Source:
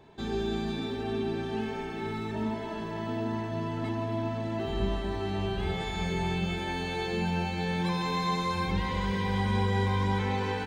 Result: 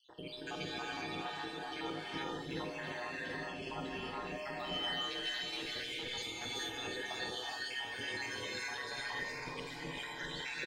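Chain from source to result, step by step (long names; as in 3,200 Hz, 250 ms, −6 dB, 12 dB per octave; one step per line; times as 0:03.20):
time-frequency cells dropped at random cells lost 75%
meter weighting curve A
reverb reduction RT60 1.8 s
0:04.38–0:06.77: high-shelf EQ 3,300 Hz +9.5 dB
compressor whose output falls as the input rises −46 dBFS, ratio −1
ring modulation 65 Hz
tuned comb filter 610 Hz, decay 0.54 s, mix 80%
multi-tap delay 49/723 ms −10.5/−11 dB
reverb whose tail is shaped and stops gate 450 ms rising, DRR −4 dB
level +14.5 dB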